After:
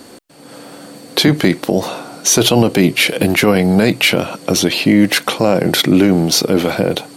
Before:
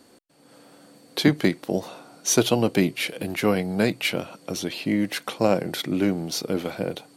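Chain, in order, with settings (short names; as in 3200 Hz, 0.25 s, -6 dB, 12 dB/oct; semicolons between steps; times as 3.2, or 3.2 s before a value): maximiser +17 dB; gain -1 dB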